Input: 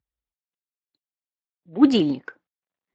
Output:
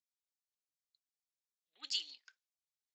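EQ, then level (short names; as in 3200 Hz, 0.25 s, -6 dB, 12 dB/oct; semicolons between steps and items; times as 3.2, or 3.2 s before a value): Butterworth band-pass 5800 Hz, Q 1.3; 0.0 dB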